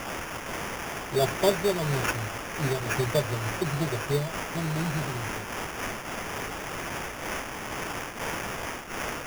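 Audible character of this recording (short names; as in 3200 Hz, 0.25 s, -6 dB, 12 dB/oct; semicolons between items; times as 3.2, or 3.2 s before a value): a quantiser's noise floor 6-bit, dither triangular; phasing stages 2, 0.34 Hz, lowest notch 610–2900 Hz; aliases and images of a low sample rate 4100 Hz, jitter 0%; noise-modulated level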